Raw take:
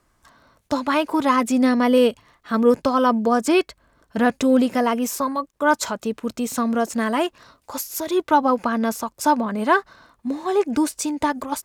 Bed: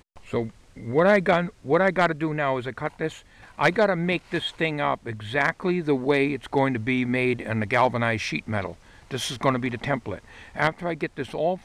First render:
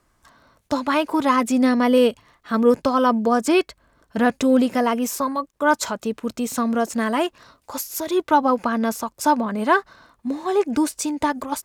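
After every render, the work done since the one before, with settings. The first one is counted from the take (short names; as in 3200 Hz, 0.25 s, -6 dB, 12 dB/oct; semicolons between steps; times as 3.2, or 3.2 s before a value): nothing audible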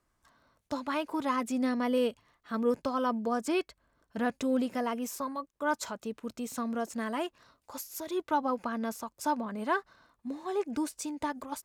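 gain -12 dB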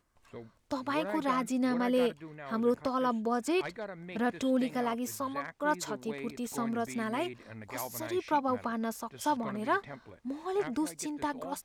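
add bed -20 dB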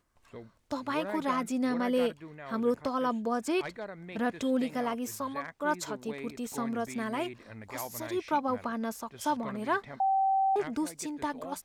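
10–10.56 bleep 774 Hz -23 dBFS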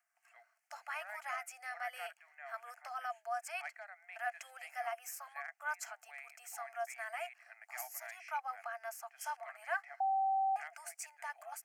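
rippled Chebyshev high-pass 680 Hz, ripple 3 dB; fixed phaser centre 1000 Hz, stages 6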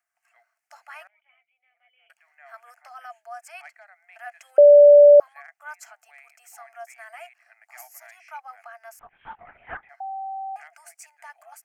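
1.07–2.1 vocal tract filter i; 4.58–5.2 bleep 582 Hz -6.5 dBFS; 8.99–9.89 LPC vocoder at 8 kHz whisper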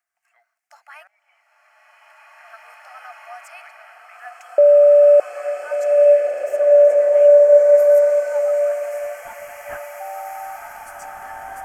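bloom reverb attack 2.49 s, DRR -6.5 dB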